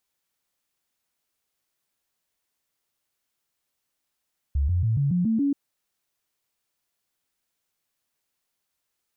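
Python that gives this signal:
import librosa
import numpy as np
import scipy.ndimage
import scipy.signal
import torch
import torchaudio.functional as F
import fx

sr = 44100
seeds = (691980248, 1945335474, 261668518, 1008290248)

y = fx.stepped_sweep(sr, from_hz=70.4, direction='up', per_octave=3, tones=7, dwell_s=0.14, gap_s=0.0, level_db=-19.5)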